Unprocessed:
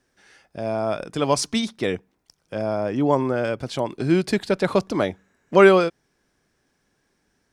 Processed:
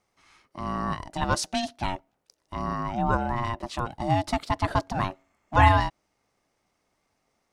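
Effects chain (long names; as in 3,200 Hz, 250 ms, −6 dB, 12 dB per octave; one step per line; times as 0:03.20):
ring modulation 470 Hz
level −2 dB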